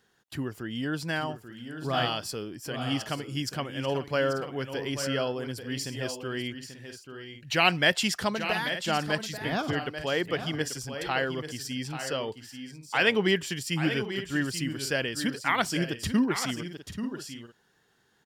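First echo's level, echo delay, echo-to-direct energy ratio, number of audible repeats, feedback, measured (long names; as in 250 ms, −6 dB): −10.0 dB, 837 ms, −9.0 dB, 2, repeats not evenly spaced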